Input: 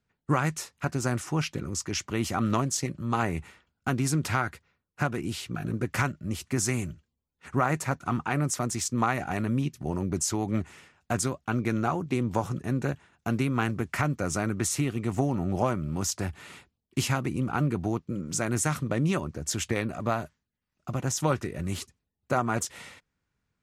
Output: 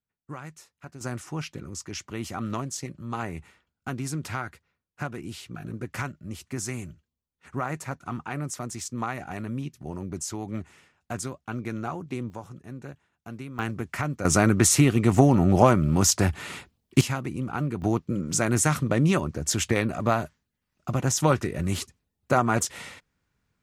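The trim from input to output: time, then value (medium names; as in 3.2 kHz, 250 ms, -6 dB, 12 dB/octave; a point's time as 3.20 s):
-14 dB
from 1.01 s -5 dB
from 12.30 s -11.5 dB
from 13.59 s -2 dB
from 14.25 s +9 dB
from 17.01 s -2 dB
from 17.82 s +4.5 dB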